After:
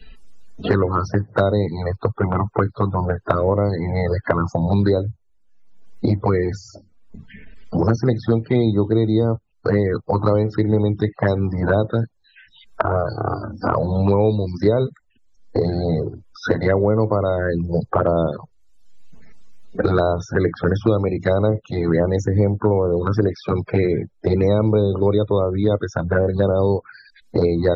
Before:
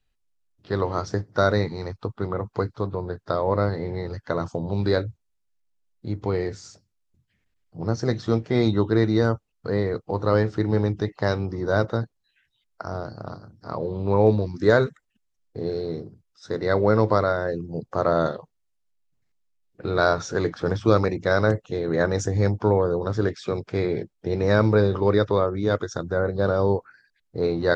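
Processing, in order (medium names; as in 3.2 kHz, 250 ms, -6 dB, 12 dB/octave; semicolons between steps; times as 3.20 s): loudest bins only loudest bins 64; touch-sensitive flanger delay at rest 4.6 ms, full sweep at -17.5 dBFS; three bands compressed up and down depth 100%; trim +5 dB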